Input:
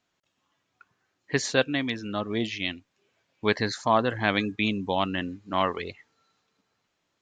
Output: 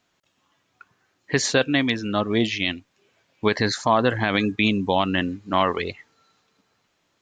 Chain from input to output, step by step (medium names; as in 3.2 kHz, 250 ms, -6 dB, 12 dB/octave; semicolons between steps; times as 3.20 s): peak limiter -14 dBFS, peak gain reduction 8.5 dB; trim +7 dB